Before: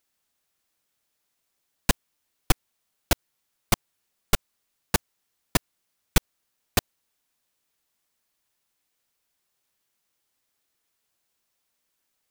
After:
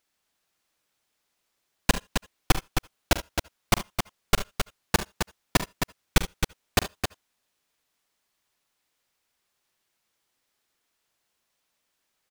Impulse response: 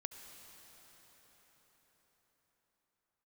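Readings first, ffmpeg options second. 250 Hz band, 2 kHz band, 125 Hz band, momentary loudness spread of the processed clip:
+2.0 dB, +3.0 dB, +1.5 dB, 8 LU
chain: -filter_complex "[0:a]highshelf=f=7.8k:g=-8,aecho=1:1:45|68|73|265:0.2|0.119|0.141|0.473,asplit=2[a][b];[1:a]atrim=start_sample=2205,atrim=end_sample=3969,lowshelf=f=270:g=-8.5[c];[b][c]afir=irnorm=-1:irlink=0,volume=0.5dB[d];[a][d]amix=inputs=2:normalize=0,volume=-2dB"

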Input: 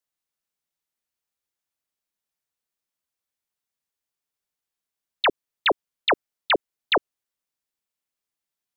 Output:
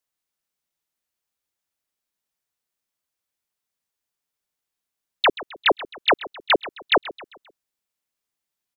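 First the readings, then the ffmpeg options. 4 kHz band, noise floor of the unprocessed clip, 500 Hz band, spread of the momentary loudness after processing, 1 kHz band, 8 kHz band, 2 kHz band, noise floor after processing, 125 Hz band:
+2.5 dB, under -85 dBFS, +2.5 dB, 1 LU, +2.5 dB, n/a, +2.5 dB, -85 dBFS, +2.5 dB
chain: -af "aecho=1:1:132|264|396|528:0.141|0.0636|0.0286|0.0129,volume=2.5dB"

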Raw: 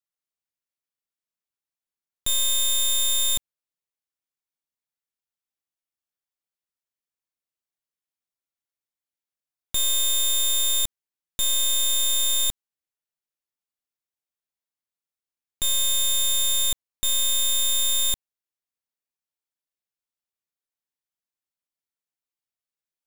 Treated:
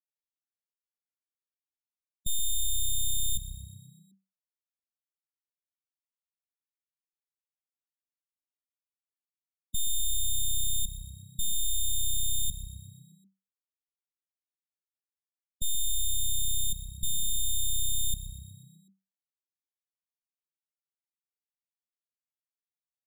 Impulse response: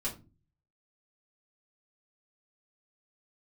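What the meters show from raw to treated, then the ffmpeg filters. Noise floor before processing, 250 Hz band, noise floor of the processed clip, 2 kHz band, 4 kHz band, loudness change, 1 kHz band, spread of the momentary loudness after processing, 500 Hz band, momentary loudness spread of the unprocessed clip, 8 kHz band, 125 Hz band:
under -85 dBFS, n/a, under -85 dBFS, under -40 dB, -11.5 dB, -9.0 dB, under -40 dB, 14 LU, under -30 dB, 6 LU, -8.0 dB, +6.5 dB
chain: -filter_complex "[0:a]afftfilt=real='re*gte(hypot(re,im),0.0501)':imag='im*gte(hypot(re,im),0.0501)':win_size=1024:overlap=0.75,highshelf=f=2.3k:t=q:w=3:g=-7.5,asplit=2[a][b];[b]asplit=6[c][d][e][f][g][h];[c]adelay=123,afreqshift=32,volume=-15.5dB[i];[d]adelay=246,afreqshift=64,volume=-20.1dB[j];[e]adelay=369,afreqshift=96,volume=-24.7dB[k];[f]adelay=492,afreqshift=128,volume=-29.2dB[l];[g]adelay=615,afreqshift=160,volume=-33.8dB[m];[h]adelay=738,afreqshift=192,volume=-38.4dB[n];[i][j][k][l][m][n]amix=inputs=6:normalize=0[o];[a][o]amix=inputs=2:normalize=0"

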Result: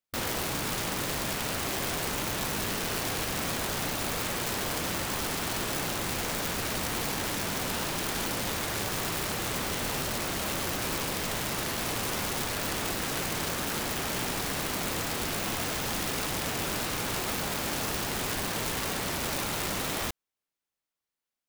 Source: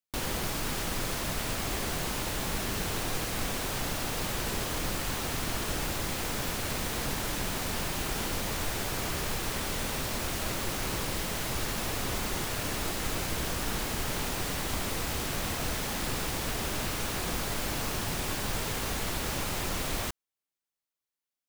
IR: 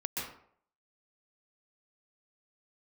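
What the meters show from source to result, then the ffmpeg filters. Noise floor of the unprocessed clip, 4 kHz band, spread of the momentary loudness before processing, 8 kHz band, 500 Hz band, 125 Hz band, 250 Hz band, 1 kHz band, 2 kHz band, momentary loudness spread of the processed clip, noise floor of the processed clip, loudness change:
under -85 dBFS, +2.0 dB, 0 LU, +2.0 dB, +2.0 dB, -1.0 dB, +1.0 dB, +2.0 dB, +2.0 dB, 0 LU, under -85 dBFS, +1.5 dB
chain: -af "afftfilt=real='re*lt(hypot(re,im),0.141)':imag='im*lt(hypot(re,im),0.141)':win_size=1024:overlap=0.75,highshelf=f=3.9k:g=-5,aeval=exprs='(mod(23.7*val(0)+1,2)-1)/23.7':c=same,volume=3.5dB"

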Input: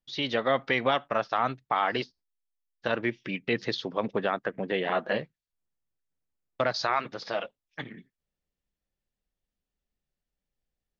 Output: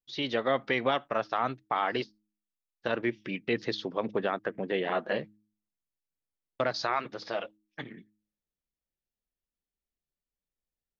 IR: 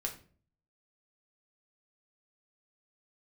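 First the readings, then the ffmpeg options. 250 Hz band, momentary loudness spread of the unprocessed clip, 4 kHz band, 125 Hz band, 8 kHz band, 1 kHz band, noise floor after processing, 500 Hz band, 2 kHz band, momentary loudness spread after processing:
-1.0 dB, 13 LU, -3.0 dB, -3.0 dB, n/a, -2.5 dB, under -85 dBFS, -1.5 dB, -3.0 dB, 13 LU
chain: -af "equalizer=f=350:w=1.5:g=3.5,agate=range=-6dB:threshold=-48dB:ratio=16:detection=peak,bandreject=f=105.2:t=h:w=4,bandreject=f=210.4:t=h:w=4,bandreject=f=315.6:t=h:w=4,volume=-3dB"

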